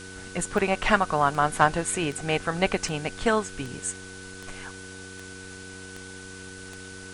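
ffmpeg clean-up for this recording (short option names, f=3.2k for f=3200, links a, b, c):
-af "adeclick=t=4,bandreject=f=93.9:t=h:w=4,bandreject=f=187.8:t=h:w=4,bandreject=f=281.7:t=h:w=4,bandreject=f=375.6:t=h:w=4,bandreject=f=469.5:t=h:w=4,bandreject=f=1.5k:w=30,afwtdn=0.0063"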